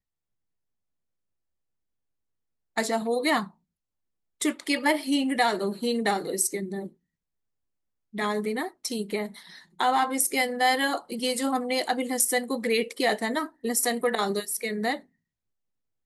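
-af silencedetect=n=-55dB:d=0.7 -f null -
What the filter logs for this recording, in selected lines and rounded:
silence_start: 0.00
silence_end: 2.76 | silence_duration: 2.76
silence_start: 3.52
silence_end: 4.40 | silence_duration: 0.88
silence_start: 6.94
silence_end: 8.13 | silence_duration: 1.19
silence_start: 15.06
silence_end: 16.06 | silence_duration: 1.00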